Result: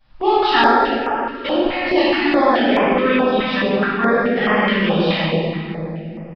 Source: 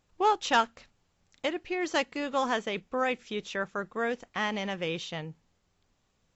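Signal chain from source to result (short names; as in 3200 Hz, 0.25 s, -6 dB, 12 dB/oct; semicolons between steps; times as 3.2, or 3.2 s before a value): notches 50/100/150/200 Hz; in parallel at +2 dB: compressor, threshold -36 dBFS, peak gain reduction 16 dB; on the sum: reverb RT60 3.1 s, pre-delay 3 ms, DRR -18 dB; downsampling 11025 Hz; stepped notch 4.7 Hz 400–4000 Hz; gain -7.5 dB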